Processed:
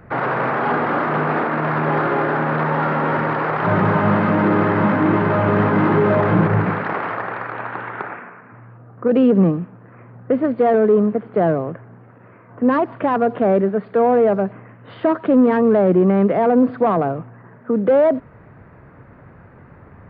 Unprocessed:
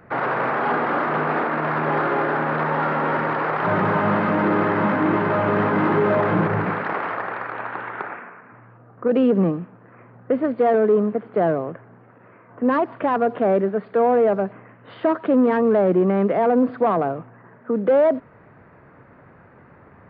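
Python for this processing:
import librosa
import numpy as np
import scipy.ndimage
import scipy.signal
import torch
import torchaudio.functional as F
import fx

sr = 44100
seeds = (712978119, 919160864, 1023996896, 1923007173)

y = fx.low_shelf(x, sr, hz=130.0, db=11.5)
y = y * librosa.db_to_amplitude(1.5)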